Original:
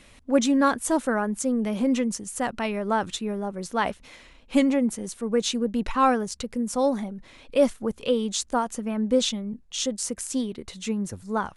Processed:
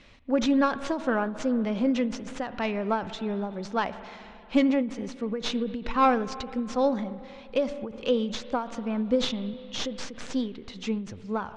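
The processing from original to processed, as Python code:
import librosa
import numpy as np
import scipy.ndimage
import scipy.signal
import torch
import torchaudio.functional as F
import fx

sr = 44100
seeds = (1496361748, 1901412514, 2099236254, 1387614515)

y = fx.tracing_dist(x, sr, depth_ms=0.14)
y = scipy.signal.sosfilt(scipy.signal.butter(4, 5500.0, 'lowpass', fs=sr, output='sos'), y)
y = fx.rev_spring(y, sr, rt60_s=2.8, pass_ms=(45, 59), chirp_ms=75, drr_db=14.0)
y = fx.end_taper(y, sr, db_per_s=120.0)
y = F.gain(torch.from_numpy(y), -1.0).numpy()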